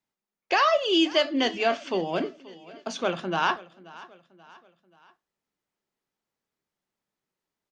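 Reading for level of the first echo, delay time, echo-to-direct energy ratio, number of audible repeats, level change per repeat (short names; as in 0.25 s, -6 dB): -20.0 dB, 0.532 s, -19.0 dB, 3, -6.5 dB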